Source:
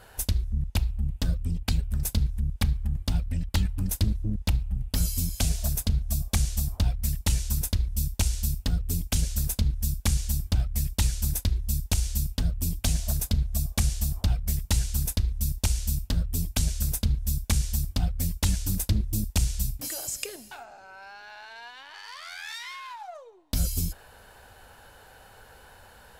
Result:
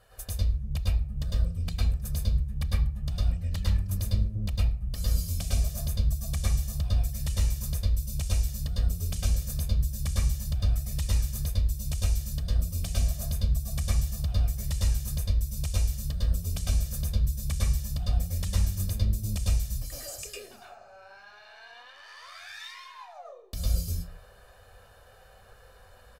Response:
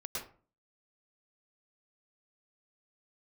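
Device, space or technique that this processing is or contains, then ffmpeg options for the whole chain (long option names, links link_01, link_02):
microphone above a desk: -filter_complex "[0:a]aecho=1:1:1.7:0.52[link_01];[1:a]atrim=start_sample=2205[link_02];[link_01][link_02]afir=irnorm=-1:irlink=0,volume=-6dB"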